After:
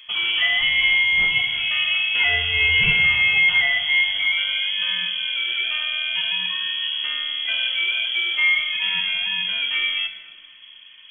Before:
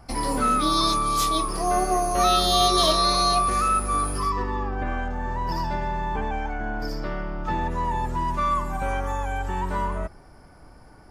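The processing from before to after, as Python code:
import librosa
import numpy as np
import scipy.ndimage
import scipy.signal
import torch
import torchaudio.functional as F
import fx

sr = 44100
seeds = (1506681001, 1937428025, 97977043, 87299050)

y = fx.freq_invert(x, sr, carrier_hz=3300)
y = fx.room_shoebox(y, sr, seeds[0], volume_m3=1400.0, walls='mixed', distance_m=0.91)
y = y * 10.0 ** (1.5 / 20.0)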